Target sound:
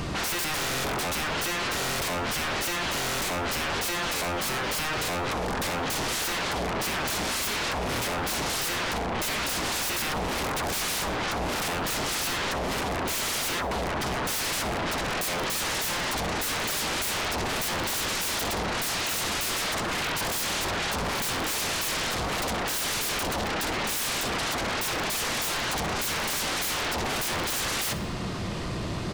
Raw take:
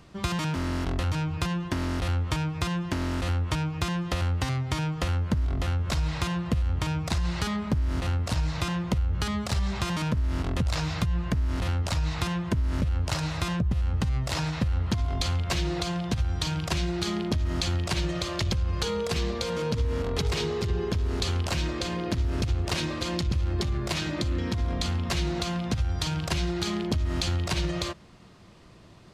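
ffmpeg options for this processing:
-filter_complex "[0:a]alimiter=level_in=2dB:limit=-24dB:level=0:latency=1:release=11,volume=-2dB,aeval=exprs='0.0501*sin(PI/2*7.94*val(0)/0.0501)':c=same,asplit=2[a][b];[b]aecho=0:1:61|122|183|244:0.158|0.0761|0.0365|0.0175[c];[a][c]amix=inputs=2:normalize=0"

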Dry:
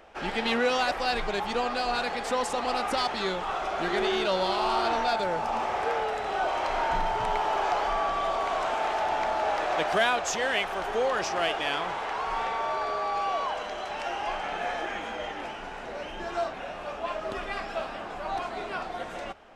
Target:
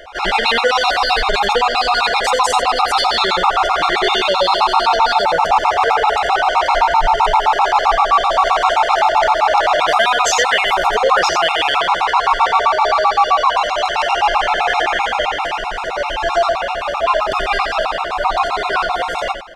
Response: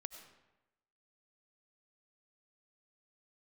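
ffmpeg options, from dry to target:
-filter_complex "[0:a]equalizer=f=125:t=o:w=1:g=-6,equalizer=f=250:t=o:w=1:g=-12,equalizer=f=1k:t=o:w=1:g=5,equalizer=f=4k:t=o:w=1:g=5,acontrast=89,asplit=2[a][b];[b]aecho=0:1:88:0.501[c];[a][c]amix=inputs=2:normalize=0,aresample=32000,aresample=44100,alimiter=level_in=11.5dB:limit=-1dB:release=50:level=0:latency=1,afftfilt=real='re*gt(sin(2*PI*7.7*pts/sr)*(1-2*mod(floor(b*sr/1024/710),2)),0)':imag='im*gt(sin(2*PI*7.7*pts/sr)*(1-2*mod(floor(b*sr/1024/710),2)),0)':win_size=1024:overlap=0.75,volume=-1.5dB"

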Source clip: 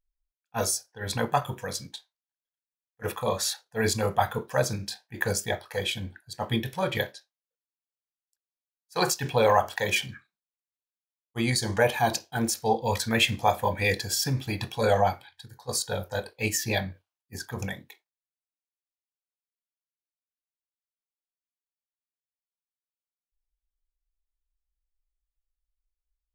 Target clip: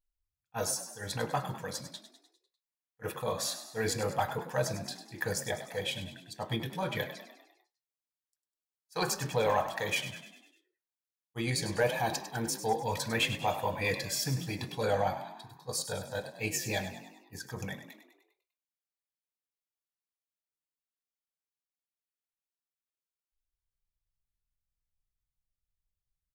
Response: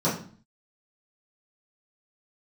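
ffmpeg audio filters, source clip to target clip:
-filter_complex "[0:a]asoftclip=type=tanh:threshold=-12.5dB,aecho=1:1:6.4:0.32,asplit=7[a][b][c][d][e][f][g];[b]adelay=100,afreqshift=40,volume=-11dB[h];[c]adelay=200,afreqshift=80,volume=-16.5dB[i];[d]adelay=300,afreqshift=120,volume=-22dB[j];[e]adelay=400,afreqshift=160,volume=-27.5dB[k];[f]adelay=500,afreqshift=200,volume=-33.1dB[l];[g]adelay=600,afreqshift=240,volume=-38.6dB[m];[a][h][i][j][k][l][m]amix=inputs=7:normalize=0,volume=-6dB"

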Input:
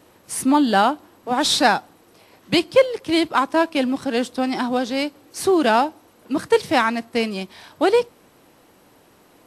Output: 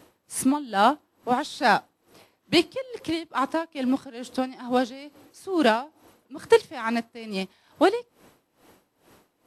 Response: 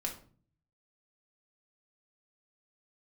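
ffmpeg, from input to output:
-af "aeval=exprs='val(0)*pow(10,-20*(0.5-0.5*cos(2*PI*2.3*n/s))/20)':c=same"

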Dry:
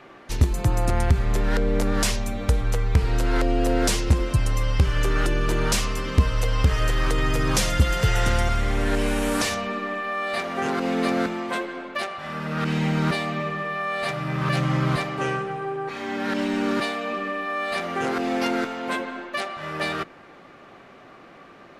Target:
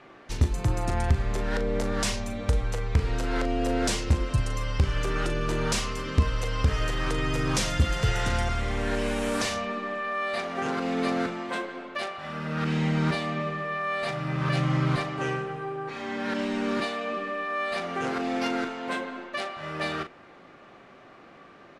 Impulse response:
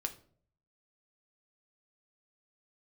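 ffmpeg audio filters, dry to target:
-filter_complex "[0:a]lowpass=9.1k,asplit=2[a][b];[b]adelay=39,volume=-9dB[c];[a][c]amix=inputs=2:normalize=0,volume=-4dB"

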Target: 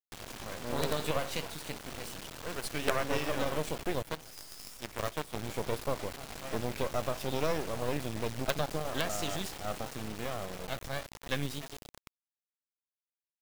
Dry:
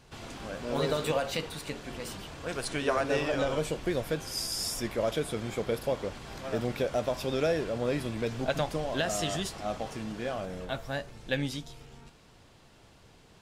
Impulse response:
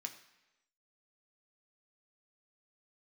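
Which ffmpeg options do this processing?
-filter_complex "[0:a]asplit=4[a][b][c][d];[b]adelay=299,afreqshift=140,volume=-18.5dB[e];[c]adelay=598,afreqshift=280,volume=-28.7dB[f];[d]adelay=897,afreqshift=420,volume=-38.8dB[g];[a][e][f][g]amix=inputs=4:normalize=0,acrusher=bits=4:dc=4:mix=0:aa=0.000001,asettb=1/sr,asplit=3[h][i][j];[h]atrim=end=4.024[k];[i]atrim=start=4.02:end=5.36,asetpts=PTS-STARTPTS,afade=t=in:d=0.004:c=qsin,afade=t=out:st=1.336:d=0.004:c=qsin,aeval=exprs='0.133*(cos(1*acos(clip(val(0)/0.133,-1,1)))-cos(1*PI/2))+0.0211*(cos(8*acos(clip(val(0)/0.133,-1,1)))-cos(8*PI/2))':c=same[l];[j]atrim=start=5.356[m];[k][l]acrossfade=d=0.004:c1=hsin:c2=qsin[n];[n][m]acrossfade=d=0.004:c1=qsin:c2=hsin"

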